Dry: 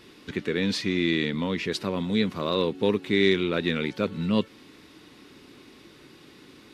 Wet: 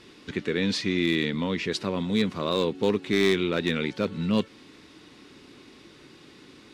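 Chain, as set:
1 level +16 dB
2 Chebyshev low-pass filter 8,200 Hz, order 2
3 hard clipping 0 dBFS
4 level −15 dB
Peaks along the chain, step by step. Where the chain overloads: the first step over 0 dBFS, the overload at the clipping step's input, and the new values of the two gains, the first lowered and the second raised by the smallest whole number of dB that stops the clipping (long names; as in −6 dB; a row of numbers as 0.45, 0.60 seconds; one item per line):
+8.5, +7.5, 0.0, −15.0 dBFS
step 1, 7.5 dB
step 1 +8 dB, step 4 −7 dB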